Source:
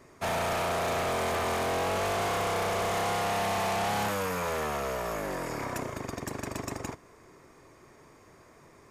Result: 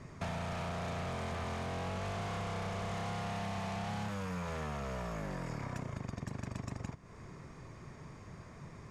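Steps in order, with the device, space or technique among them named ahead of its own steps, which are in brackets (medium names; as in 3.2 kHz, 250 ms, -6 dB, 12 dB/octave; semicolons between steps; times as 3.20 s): jukebox (low-pass 7 kHz 12 dB/octave; resonant low shelf 240 Hz +9 dB, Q 1.5; compression 4:1, threshold -40 dBFS, peak gain reduction 14 dB); trim +1.5 dB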